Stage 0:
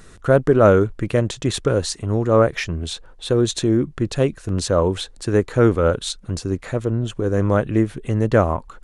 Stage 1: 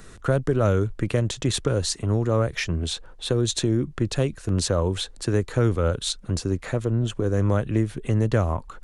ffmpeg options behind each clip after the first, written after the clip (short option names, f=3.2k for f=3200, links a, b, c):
-filter_complex "[0:a]acrossover=split=140|3000[a][b][c];[b]acompressor=threshold=-23dB:ratio=3[d];[a][d][c]amix=inputs=3:normalize=0"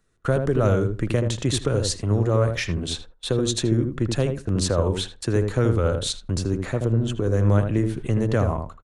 -filter_complex "[0:a]agate=range=-24dB:threshold=-36dB:ratio=16:detection=peak,asplit=2[a][b];[b]adelay=79,lowpass=f=960:p=1,volume=-4dB,asplit=2[c][d];[d]adelay=79,lowpass=f=960:p=1,volume=0.17,asplit=2[e][f];[f]adelay=79,lowpass=f=960:p=1,volume=0.17[g];[c][e][g]amix=inputs=3:normalize=0[h];[a][h]amix=inputs=2:normalize=0"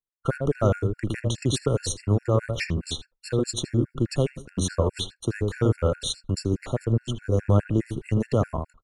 -af "agate=range=-33dB:threshold=-33dB:ratio=3:detection=peak,afftfilt=real='re*gt(sin(2*PI*4.8*pts/sr)*(1-2*mod(floor(b*sr/1024/1400),2)),0)':imag='im*gt(sin(2*PI*4.8*pts/sr)*(1-2*mod(floor(b*sr/1024/1400),2)),0)':win_size=1024:overlap=0.75"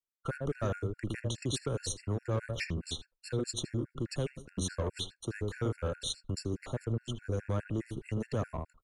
-filter_complex "[0:a]acrossover=split=370|1200[a][b][c];[a]alimiter=limit=-19dB:level=0:latency=1:release=274[d];[b]asoftclip=type=tanh:threshold=-27.5dB[e];[d][e][c]amix=inputs=3:normalize=0,volume=-7dB"